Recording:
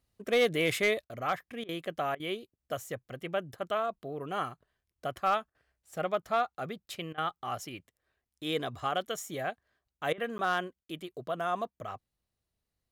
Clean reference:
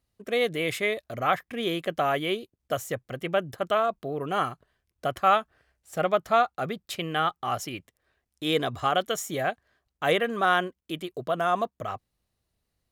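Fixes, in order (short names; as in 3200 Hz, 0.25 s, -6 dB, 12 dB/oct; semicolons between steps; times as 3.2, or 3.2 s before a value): clip repair -19.5 dBFS; interpolate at 6.22/10.38, 10 ms; interpolate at 1.05/1.64/2.15/5.5/7.13/10.13/10.84, 47 ms; gain 0 dB, from 1.07 s +7 dB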